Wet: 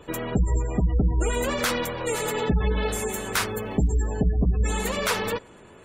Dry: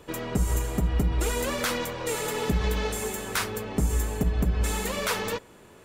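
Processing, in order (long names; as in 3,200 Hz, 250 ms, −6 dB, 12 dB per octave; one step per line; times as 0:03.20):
gate on every frequency bin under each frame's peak −25 dB strong
0:02.82–0:04.10: surface crackle 420 per second −55 dBFS
level +3 dB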